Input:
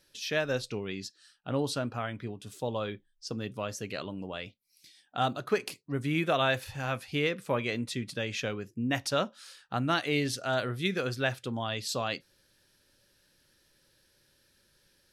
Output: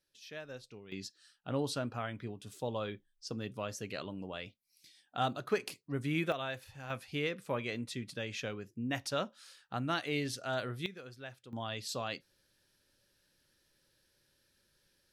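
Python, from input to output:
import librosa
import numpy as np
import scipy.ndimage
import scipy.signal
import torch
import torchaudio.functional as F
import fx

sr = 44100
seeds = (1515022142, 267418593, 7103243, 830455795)

y = fx.gain(x, sr, db=fx.steps((0.0, -16.0), (0.92, -4.0), (6.32, -12.0), (6.9, -6.0), (10.86, -17.5), (11.53, -6.0)))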